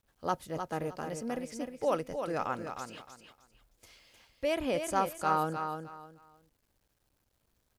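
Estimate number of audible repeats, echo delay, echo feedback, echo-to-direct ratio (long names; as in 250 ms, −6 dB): 3, 308 ms, 24%, −6.5 dB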